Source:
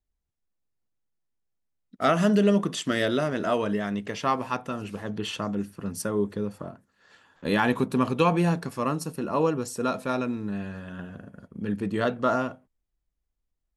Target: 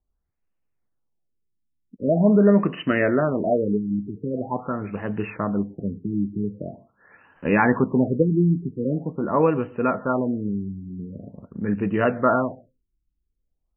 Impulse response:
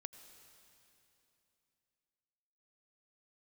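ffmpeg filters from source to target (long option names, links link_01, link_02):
-filter_complex "[0:a]asplit=2[link_01][link_02];[1:a]atrim=start_sample=2205,afade=type=out:start_time=0.22:duration=0.01,atrim=end_sample=10143[link_03];[link_02][link_03]afir=irnorm=-1:irlink=0,volume=3dB[link_04];[link_01][link_04]amix=inputs=2:normalize=0,afftfilt=real='re*lt(b*sr/1024,370*pow(3100/370,0.5+0.5*sin(2*PI*0.44*pts/sr)))':imag='im*lt(b*sr/1024,370*pow(3100/370,0.5+0.5*sin(2*PI*0.44*pts/sr)))':win_size=1024:overlap=0.75"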